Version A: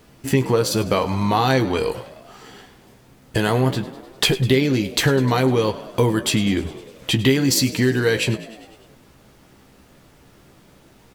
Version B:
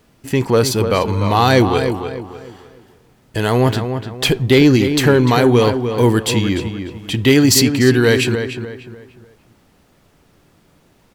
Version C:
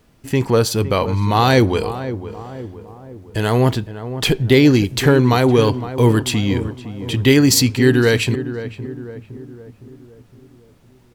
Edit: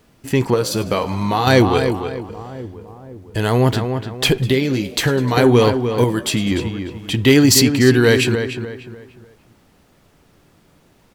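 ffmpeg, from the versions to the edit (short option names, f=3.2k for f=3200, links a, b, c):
-filter_complex "[0:a]asplit=3[a][b][c];[1:a]asplit=5[d][e][f][g][h];[d]atrim=end=0.542[i];[a]atrim=start=0.538:end=1.472[j];[e]atrim=start=1.468:end=2.292[k];[2:a]atrim=start=2.288:end=3.732[l];[f]atrim=start=3.728:end=4.382[m];[b]atrim=start=4.378:end=5.372[n];[g]atrim=start=5.368:end=6.042[o];[c]atrim=start=6.038:end=6.512[p];[h]atrim=start=6.508[q];[i][j]acrossfade=d=0.004:c1=hsin:c2=hsin[r];[r][k]acrossfade=d=0.004:c1=hsin:c2=hsin[s];[s][l]acrossfade=d=0.004:c1=hsin:c2=hsin[t];[t][m]acrossfade=d=0.004:c1=hsin:c2=hsin[u];[u][n]acrossfade=d=0.004:c1=hsin:c2=hsin[v];[v][o]acrossfade=d=0.004:c1=hsin:c2=hsin[w];[w][p]acrossfade=d=0.004:c1=hsin:c2=hsin[x];[x][q]acrossfade=d=0.004:c1=hsin:c2=hsin"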